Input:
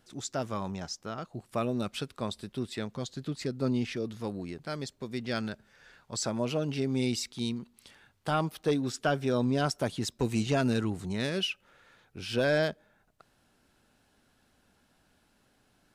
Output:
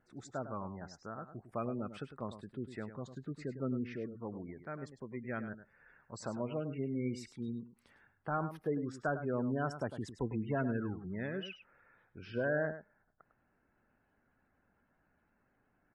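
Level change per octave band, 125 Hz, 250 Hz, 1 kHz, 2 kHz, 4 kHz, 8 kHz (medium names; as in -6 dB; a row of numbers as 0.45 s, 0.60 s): -7.0 dB, -7.0 dB, -6.5 dB, -6.0 dB, -19.0 dB, -18.0 dB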